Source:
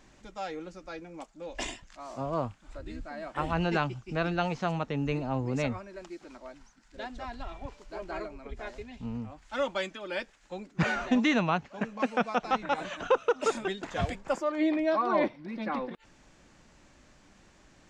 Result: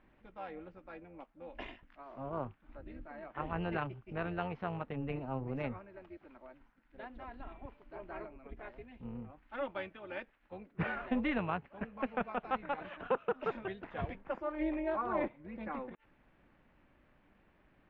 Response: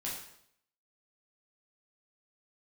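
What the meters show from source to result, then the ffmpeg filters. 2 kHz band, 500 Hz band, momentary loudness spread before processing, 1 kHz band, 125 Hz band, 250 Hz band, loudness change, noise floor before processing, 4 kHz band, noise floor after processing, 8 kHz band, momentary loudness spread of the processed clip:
-8.5 dB, -8.0 dB, 17 LU, -8.0 dB, -8.0 dB, -8.0 dB, -8.0 dB, -60 dBFS, -15.0 dB, -69 dBFS, under -30 dB, 17 LU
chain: -af "lowpass=f=2.7k:w=0.5412,lowpass=f=2.7k:w=1.3066,tremolo=f=270:d=0.571,volume=-5.5dB"

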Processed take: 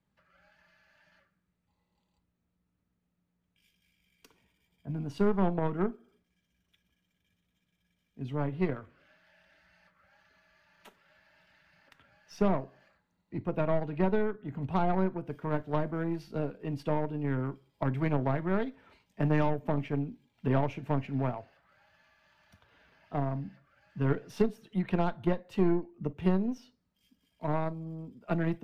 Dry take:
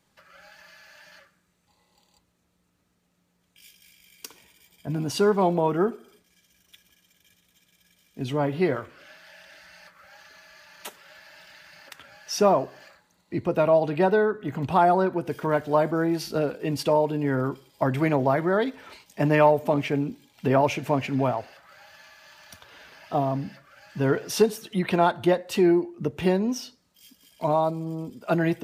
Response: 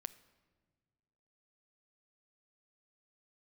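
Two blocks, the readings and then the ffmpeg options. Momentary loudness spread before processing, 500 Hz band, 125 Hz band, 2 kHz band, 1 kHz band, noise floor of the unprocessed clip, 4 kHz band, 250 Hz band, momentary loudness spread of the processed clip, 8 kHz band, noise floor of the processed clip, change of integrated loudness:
13 LU, -10.0 dB, -3.0 dB, -10.0 dB, -10.5 dB, -70 dBFS, -16.0 dB, -5.5 dB, 10 LU, under -20 dB, -80 dBFS, -8.0 dB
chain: -filter_complex "[0:a]aeval=exprs='0.473*(cos(1*acos(clip(val(0)/0.473,-1,1)))-cos(1*PI/2))+0.0335*(cos(6*acos(clip(val(0)/0.473,-1,1)))-cos(6*PI/2))+0.0335*(cos(7*acos(clip(val(0)/0.473,-1,1)))-cos(7*PI/2))+0.015*(cos(8*acos(clip(val(0)/0.473,-1,1)))-cos(8*PI/2))':c=same,bass=f=250:g=9,treble=f=4k:g=-11,acrossover=split=310[a][b];[b]acompressor=threshold=-19dB:ratio=6[c];[a][c]amix=inputs=2:normalize=0[d];[1:a]atrim=start_sample=2205,atrim=end_sample=3969,asetrate=70560,aresample=44100[e];[d][e]afir=irnorm=-1:irlink=0"

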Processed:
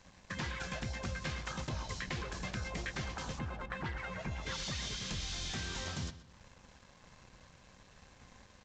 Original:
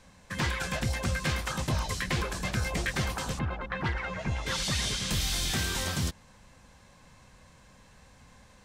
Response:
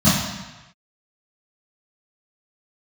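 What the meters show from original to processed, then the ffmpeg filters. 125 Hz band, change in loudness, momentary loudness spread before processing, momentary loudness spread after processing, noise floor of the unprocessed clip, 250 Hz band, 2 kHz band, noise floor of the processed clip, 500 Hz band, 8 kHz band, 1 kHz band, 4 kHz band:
-9.5 dB, -9.0 dB, 5 LU, 21 LU, -57 dBFS, -8.5 dB, -8.5 dB, -61 dBFS, -8.5 dB, -10.5 dB, -8.0 dB, -9.0 dB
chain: -filter_complex "[0:a]acompressor=threshold=-43dB:ratio=2.5,aresample=16000,aeval=exprs='sgn(val(0))*max(abs(val(0))-0.00112,0)':c=same,aresample=44100,asplit=2[a][b];[b]adelay=125,lowpass=f=5k:p=1,volume=-14dB,asplit=2[c][d];[d]adelay=125,lowpass=f=5k:p=1,volume=0.39,asplit=2[e][f];[f]adelay=125,lowpass=f=5k:p=1,volume=0.39,asplit=2[g][h];[h]adelay=125,lowpass=f=5k:p=1,volume=0.39[i];[a][c][e][g][i]amix=inputs=5:normalize=0,volume=2dB"

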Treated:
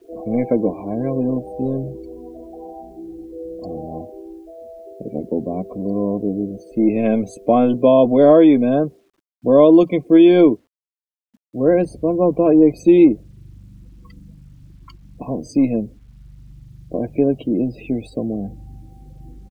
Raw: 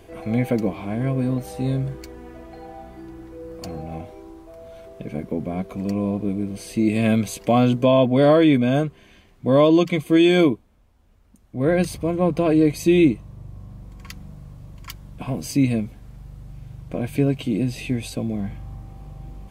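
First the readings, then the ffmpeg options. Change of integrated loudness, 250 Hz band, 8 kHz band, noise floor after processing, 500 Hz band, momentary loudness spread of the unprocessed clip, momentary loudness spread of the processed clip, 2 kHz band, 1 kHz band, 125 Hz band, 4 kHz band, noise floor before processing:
+4.0 dB, +4.0 dB, under -10 dB, under -85 dBFS, +5.5 dB, 24 LU, 22 LU, -5.5 dB, +2.5 dB, -4.0 dB, n/a, -54 dBFS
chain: -filter_complex "[0:a]aresample=32000,aresample=44100,acrossover=split=230|1300[a][b][c];[a]aeval=exprs='0.0708*(abs(mod(val(0)/0.0708+3,4)-2)-1)':c=same[d];[b]equalizer=f=340:w=0.33:g=11.5[e];[d][e][c]amix=inputs=3:normalize=0,afftdn=nr=31:nf=-31,lowshelf=f=63:g=4.5,acrusher=bits=9:mix=0:aa=0.000001,volume=-4.5dB"

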